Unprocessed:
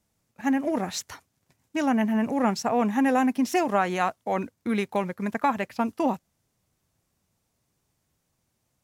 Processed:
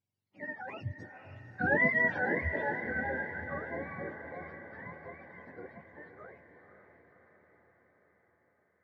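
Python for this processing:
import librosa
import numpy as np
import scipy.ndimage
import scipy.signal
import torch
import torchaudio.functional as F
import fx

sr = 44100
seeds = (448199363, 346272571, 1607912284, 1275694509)

y = fx.octave_mirror(x, sr, pivot_hz=670.0)
y = fx.doppler_pass(y, sr, speed_mps=32, closest_m=9.9, pass_at_s=1.78)
y = fx.echo_diffused(y, sr, ms=528, feedback_pct=61, wet_db=-9.5)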